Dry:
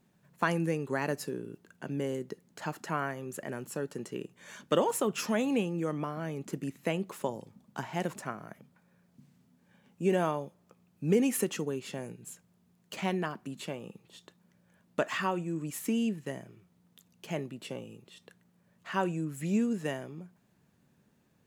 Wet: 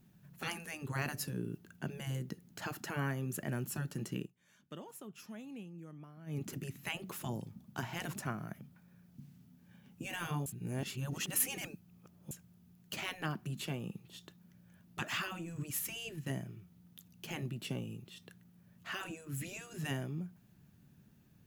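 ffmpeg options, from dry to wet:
-filter_complex "[0:a]asplit=5[s0][s1][s2][s3][s4];[s0]atrim=end=4.32,asetpts=PTS-STARTPTS,afade=t=out:st=4.18:d=0.14:silence=0.105925[s5];[s1]atrim=start=4.32:end=6.26,asetpts=PTS-STARTPTS,volume=0.106[s6];[s2]atrim=start=6.26:end=10.462,asetpts=PTS-STARTPTS,afade=t=in:d=0.14:silence=0.105925[s7];[s3]atrim=start=10.458:end=12.312,asetpts=PTS-STARTPTS,areverse[s8];[s4]atrim=start=12.308[s9];[s5][s6][s7]concat=n=3:v=0:a=1[s10];[s10][s8]acrossfade=d=0.004:c1=hsin:c2=hsin[s11];[s11][s9]acrossfade=d=0.004:c1=hsin:c2=hsin,afftfilt=real='re*lt(hypot(re,im),0.1)':imag='im*lt(hypot(re,im),0.1)':win_size=1024:overlap=0.75,equalizer=f=250:t=o:w=1:g=-4,equalizer=f=500:t=o:w=1:g=-12,equalizer=f=1000:t=o:w=1:g=-9,equalizer=f=2000:t=o:w=1:g=-7,equalizer=f=4000:t=o:w=1:g=-5,equalizer=f=8000:t=o:w=1:g=-9,volume=2.82"

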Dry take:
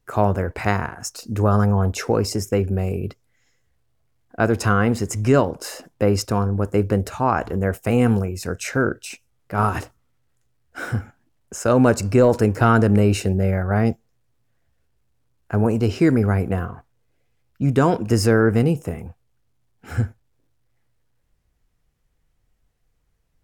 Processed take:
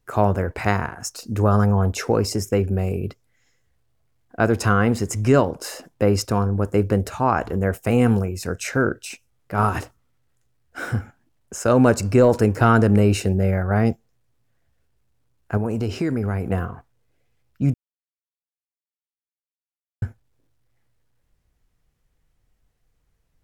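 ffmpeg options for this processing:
-filter_complex "[0:a]asettb=1/sr,asplit=3[s0][s1][s2];[s0]atrim=end=15.574[s3];[s1]atrim=start=15.57:end=16.51,asetpts=PTS-STARTPTS,afade=t=in:d=0.004:c=qsin,afade=t=out:st=0.936:d=0.004:c=qsin,acompressor=threshold=0.1:ratio=4:attack=3.2:release=140:knee=1:detection=peak[s4];[s2]atrim=start=16.506[s5];[s3][s4]acrossfade=d=0.004:c1=hsin:c2=qsin[s6];[s6][s5]acrossfade=d=0.004:c1=qsin:c2=hsin,asplit=3[s7][s8][s9];[s7]atrim=end=17.74,asetpts=PTS-STARTPTS,afade=t=out:st=17.736:d=0.004:c=hsin[s10];[s8]atrim=start=17.74:end=20.02,asetpts=PTS-STARTPTS,volume=0[s11];[s9]atrim=start=20.02,asetpts=PTS-STARTPTS,afade=t=in:d=0.004:c=hsin[s12];[s10][s11][s12]concat=n=3:v=0:a=1"

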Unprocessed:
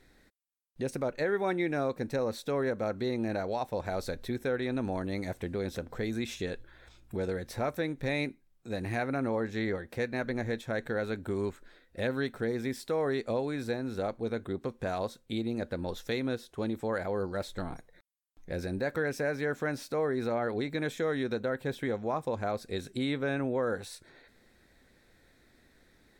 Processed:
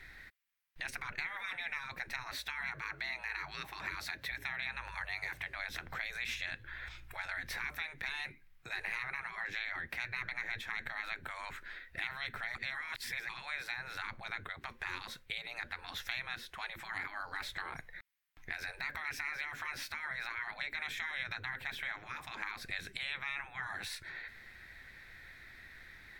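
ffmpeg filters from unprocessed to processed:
-filter_complex "[0:a]asettb=1/sr,asplit=3[s0][s1][s2];[s0]atrim=end=2.314[s3];[s1]atrim=start=2.31:end=5.56,asetpts=PTS-STARTPTS,afade=t=in:d=0.004:c=qsin,afade=t=out:st=3.246:d=0.004:c=qsin,afreqshift=43[s4];[s2]atrim=start=5.556[s5];[s3][s4]acrossfade=d=0.004:c1=hsin:c2=qsin[s6];[s6][s5]acrossfade=d=0.004:c1=qsin:c2=hsin,asplit=3[s7][s8][s9];[s7]atrim=end=12.552[s10];[s8]atrim=start=12.548:end=13.292,asetpts=PTS-STARTPTS,areverse[s11];[s9]atrim=start=13.288[s12];[s10][s11]acrossfade=d=0.004:c1=hsin:c2=hsin[s13];[s13][s12]acrossfade=d=0.004:c1=hsin:c2=hsin,afftfilt=real='re*lt(hypot(re,im),0.0355)':imag='im*lt(hypot(re,im),0.0355)':win_size=1024:overlap=0.75,equalizer=f=250:t=o:w=1:g=-10,equalizer=f=500:t=o:w=1:g=-9,equalizer=f=2000:t=o:w=1:g=11,equalizer=f=8000:t=o:w=1:g=-7,acrossover=split=410[s14][s15];[s15]acompressor=threshold=0.00447:ratio=2[s16];[s14][s16]amix=inputs=2:normalize=0,volume=2.11"

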